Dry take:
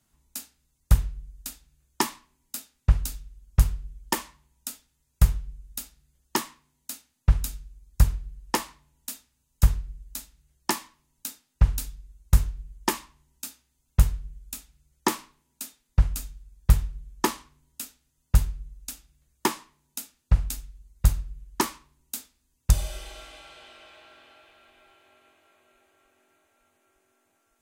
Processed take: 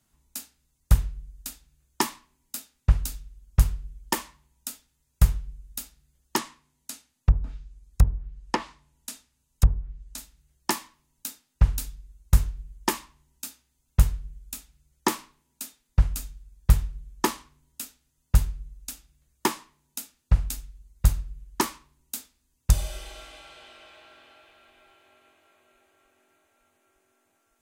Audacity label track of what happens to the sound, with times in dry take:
6.370000	10.180000	treble ducked by the level closes to 620 Hz, closed at -16.5 dBFS

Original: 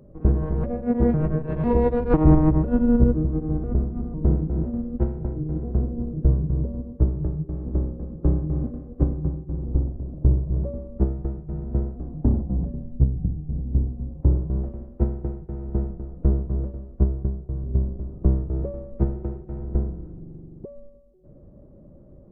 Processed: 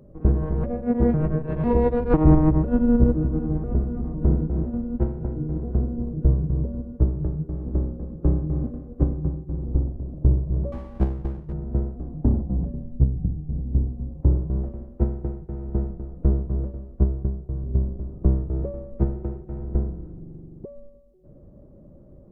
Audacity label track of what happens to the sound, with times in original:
2.510000	2.980000	echo throw 0.5 s, feedback 75%, level -12.5 dB
10.720000	11.530000	minimum comb delay 0.5 ms

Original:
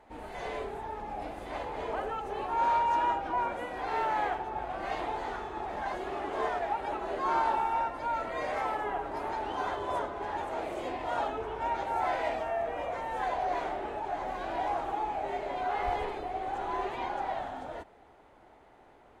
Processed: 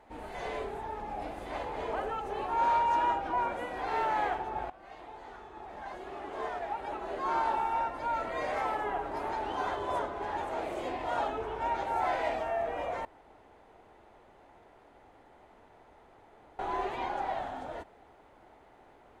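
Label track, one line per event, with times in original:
4.700000	8.190000	fade in, from -18 dB
13.050000	16.590000	room tone

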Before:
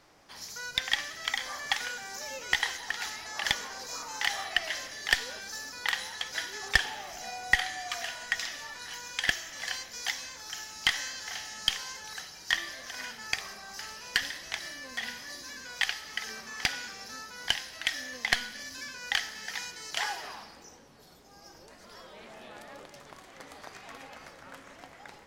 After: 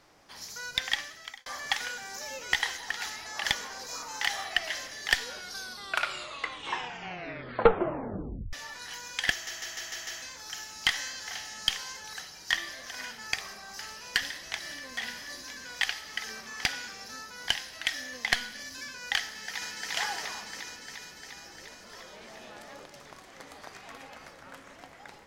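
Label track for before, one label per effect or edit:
0.870000	1.460000	fade out
5.210000	5.210000	tape stop 3.32 s
9.320000	9.320000	stutter in place 0.15 s, 6 plays
14.200000	14.930000	echo throw 0.48 s, feedback 60%, level -10 dB
19.260000	19.900000	echo throw 0.35 s, feedback 75%, level 0 dB

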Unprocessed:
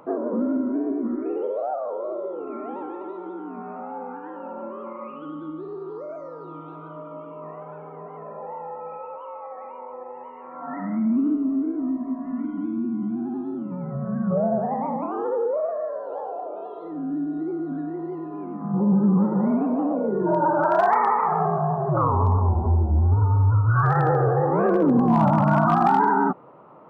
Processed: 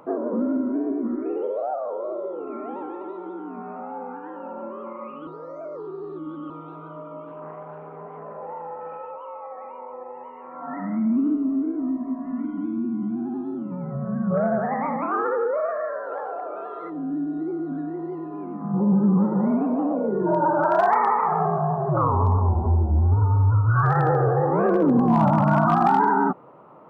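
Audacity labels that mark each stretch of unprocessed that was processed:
5.270000	6.500000	reverse
7.270000	9.110000	Doppler distortion depth 0.19 ms
14.340000	16.900000	band shelf 1700 Hz +15 dB 1.2 oct

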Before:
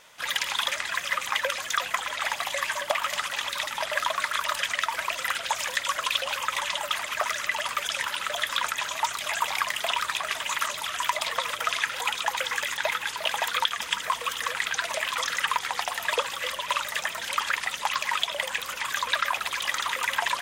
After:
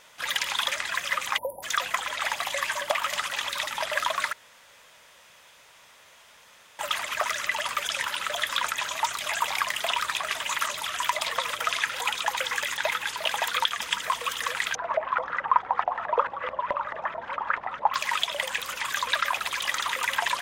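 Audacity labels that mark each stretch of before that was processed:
1.370000	1.630000	spectral delete 1000–10000 Hz
4.330000	6.790000	room tone
14.750000	17.940000	LFO low-pass saw up 4.6 Hz 640–1500 Hz

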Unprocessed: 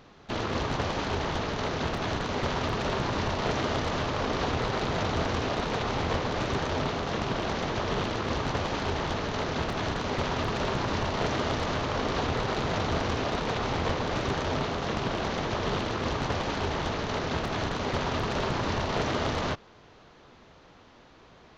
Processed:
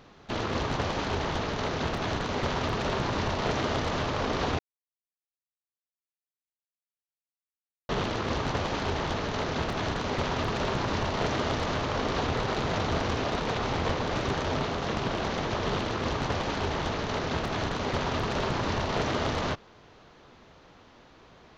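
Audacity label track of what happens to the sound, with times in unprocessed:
4.590000	7.890000	mute

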